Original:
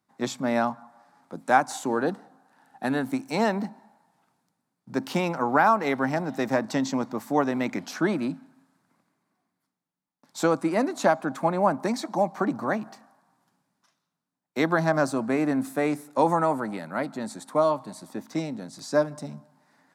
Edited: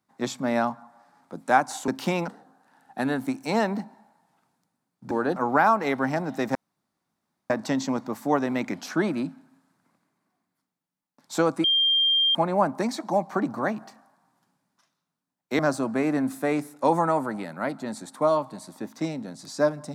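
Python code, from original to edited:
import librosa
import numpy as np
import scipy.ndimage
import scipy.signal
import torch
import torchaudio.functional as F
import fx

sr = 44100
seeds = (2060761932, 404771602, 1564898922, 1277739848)

y = fx.edit(x, sr, fx.swap(start_s=1.88, length_s=0.25, other_s=4.96, other_length_s=0.4),
    fx.insert_room_tone(at_s=6.55, length_s=0.95),
    fx.bleep(start_s=10.69, length_s=0.71, hz=3190.0, db=-18.0),
    fx.cut(start_s=14.64, length_s=0.29), tone=tone)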